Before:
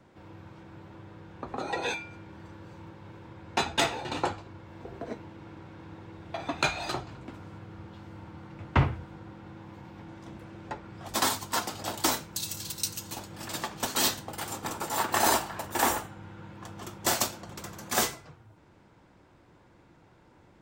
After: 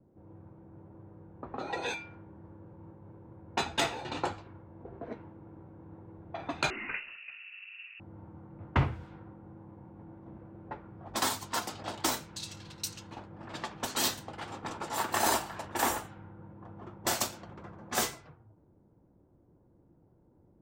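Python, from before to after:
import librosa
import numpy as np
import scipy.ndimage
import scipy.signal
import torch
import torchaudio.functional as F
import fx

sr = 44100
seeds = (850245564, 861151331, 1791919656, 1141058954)

y = fx.env_lowpass(x, sr, base_hz=420.0, full_db=-27.5)
y = fx.freq_invert(y, sr, carrier_hz=2800, at=(6.7, 8.0))
y = y * librosa.db_to_amplitude(-3.5)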